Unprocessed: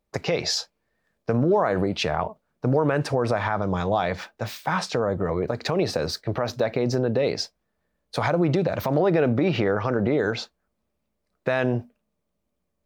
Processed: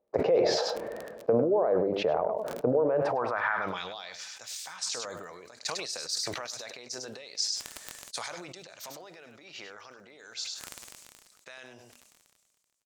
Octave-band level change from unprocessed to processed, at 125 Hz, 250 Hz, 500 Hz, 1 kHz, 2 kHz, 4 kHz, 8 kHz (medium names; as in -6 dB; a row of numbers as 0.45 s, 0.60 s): -18.0 dB, -12.0 dB, -5.5 dB, -7.0 dB, -6.5 dB, -3.0 dB, +2.0 dB